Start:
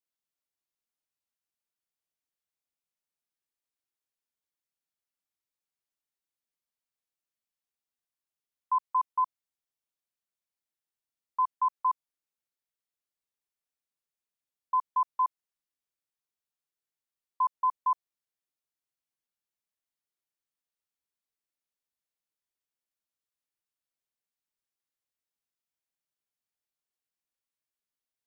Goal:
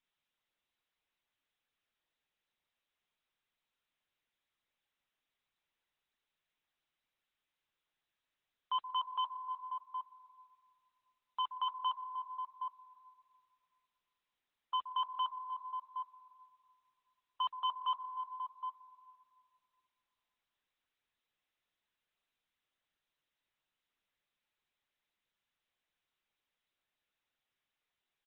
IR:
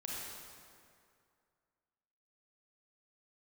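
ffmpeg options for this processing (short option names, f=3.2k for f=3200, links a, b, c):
-filter_complex "[0:a]highpass=f=770:p=1,aecho=1:1:766:0.133,asplit=2[a][b];[1:a]atrim=start_sample=2205,adelay=124[c];[b][c]afir=irnorm=-1:irlink=0,volume=-19.5dB[d];[a][d]amix=inputs=2:normalize=0,asoftclip=type=tanh:threshold=-38dB,volume=7dB" -ar 48000 -c:a libopus -b:a 8k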